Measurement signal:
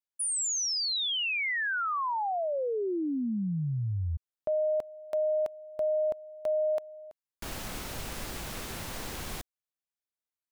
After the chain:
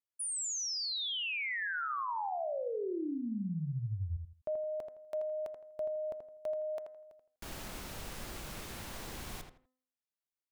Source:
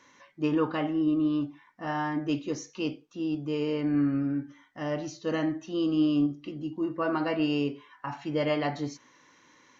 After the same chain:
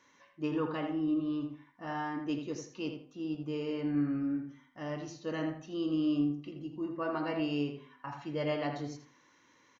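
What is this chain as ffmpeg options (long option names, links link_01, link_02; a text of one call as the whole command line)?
ffmpeg -i in.wav -filter_complex "[0:a]bandreject=frequency=256.2:width_type=h:width=4,bandreject=frequency=512.4:width_type=h:width=4,bandreject=frequency=768.6:width_type=h:width=4,bandreject=frequency=1024.8:width_type=h:width=4,bandreject=frequency=1281:width_type=h:width=4,bandreject=frequency=1537.2:width_type=h:width=4,bandreject=frequency=1793.4:width_type=h:width=4,bandreject=frequency=2049.6:width_type=h:width=4,asplit=2[link_01][link_02];[link_02]adelay=82,lowpass=frequency=2800:poles=1,volume=-6dB,asplit=2[link_03][link_04];[link_04]adelay=82,lowpass=frequency=2800:poles=1,volume=0.27,asplit=2[link_05][link_06];[link_06]adelay=82,lowpass=frequency=2800:poles=1,volume=0.27[link_07];[link_03][link_05][link_07]amix=inputs=3:normalize=0[link_08];[link_01][link_08]amix=inputs=2:normalize=0,volume=-6.5dB" out.wav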